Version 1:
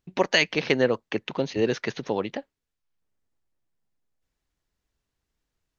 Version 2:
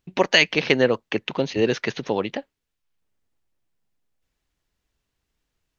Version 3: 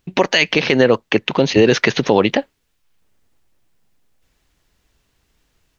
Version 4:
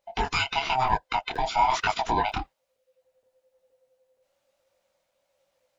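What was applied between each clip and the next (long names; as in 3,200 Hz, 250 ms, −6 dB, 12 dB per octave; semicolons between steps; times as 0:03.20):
parametric band 2,800 Hz +3 dB 0.82 octaves; level +3 dB
automatic gain control gain up to 4 dB; boost into a limiter +10.5 dB; level −1 dB
neighbouring bands swapped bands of 500 Hz; regular buffer underruns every 0.47 s, samples 256, zero, from 0:00.88; micro pitch shift up and down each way 37 cents; level −6.5 dB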